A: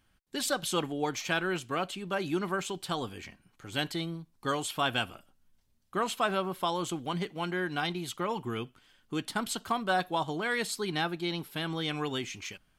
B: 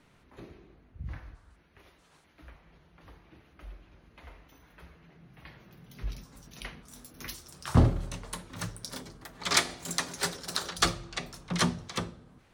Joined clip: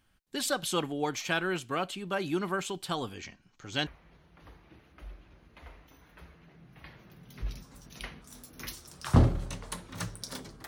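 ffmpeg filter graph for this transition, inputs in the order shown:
-filter_complex "[0:a]asettb=1/sr,asplit=3[s0][s1][s2];[s0]atrim=end=3.144[s3];[s1]atrim=start=3.14:end=3.87,asetpts=PTS-STARTPTS,afade=t=in:d=0.004:c=qsin,afade=t=out:st=0.726:d=0.004:c=qsin,highshelf=f=7900:t=q:w=3:g=-9[s4];[s2]atrim=start=3.866[s5];[s3][s4]acrossfade=d=0.004:c1=hsin:c2=qsin[s6];[s6][s5]acrossfade=d=0.004:c1=qsin:c2=hsin,apad=whole_dur=10.67,atrim=end=10.67,atrim=end=3.872[s7];[1:a]atrim=start=2.478:end=9.28[s8];[s7][s8]acrossfade=d=0.004:c1=hsin:c2=hsin"

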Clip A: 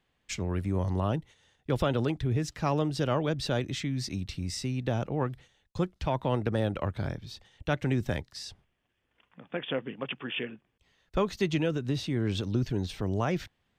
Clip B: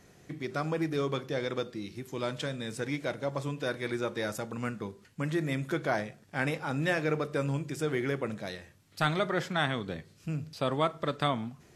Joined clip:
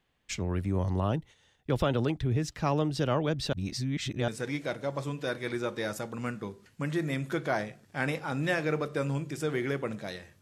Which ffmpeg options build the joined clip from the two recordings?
-filter_complex "[0:a]apad=whole_dur=10.41,atrim=end=10.41,asplit=2[s0][s1];[s0]atrim=end=3.532[s2];[s1]atrim=start=3.528:end=4.282,asetpts=PTS-STARTPTS,areverse[s3];[1:a]atrim=start=2.668:end=8.8[s4];[s2][s3]acrossfade=d=0.004:c1=hsin:c2=hsin[s5];[s5][s4]acrossfade=d=0.004:c1=hsin:c2=hsin"

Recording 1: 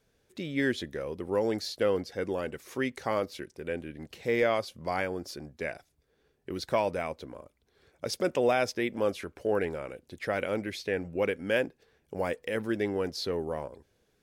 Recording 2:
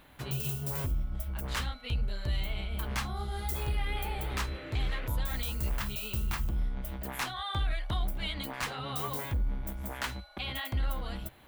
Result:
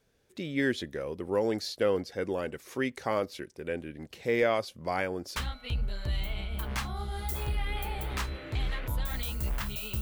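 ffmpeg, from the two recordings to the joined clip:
-filter_complex "[0:a]apad=whole_dur=10.01,atrim=end=10.01,atrim=end=5.362[s0];[1:a]atrim=start=1.558:end=6.21[s1];[s0][s1]acrossfade=d=0.004:c1=hsin:c2=hsin"

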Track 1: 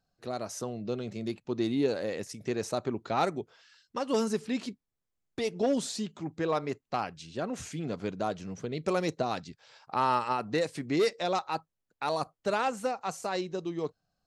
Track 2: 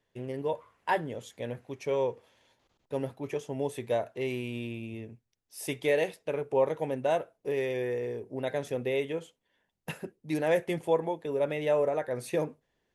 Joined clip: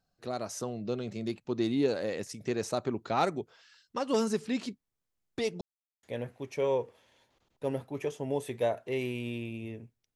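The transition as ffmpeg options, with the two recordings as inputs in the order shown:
-filter_complex "[0:a]apad=whole_dur=10.15,atrim=end=10.15,asplit=2[s0][s1];[s0]atrim=end=5.61,asetpts=PTS-STARTPTS,afade=t=out:st=5.606:d=0.004:c=hsin[s2];[s1]atrim=start=5.61:end=6.03,asetpts=PTS-STARTPTS,volume=0[s3];[1:a]atrim=start=1.32:end=5.44,asetpts=PTS-STARTPTS,afade=t=in:d=0.004:c=hsin[s4];[s2][s3][s4]concat=n=3:v=0:a=1"

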